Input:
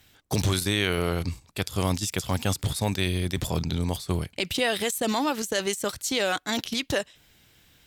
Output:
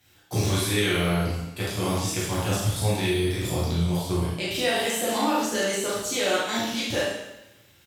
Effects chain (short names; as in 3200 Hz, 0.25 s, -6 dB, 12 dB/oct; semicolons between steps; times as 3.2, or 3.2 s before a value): HPF 58 Hz; doubler 36 ms -5 dB; plate-style reverb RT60 0.97 s, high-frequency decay 0.95×, DRR -7.5 dB; gain -7.5 dB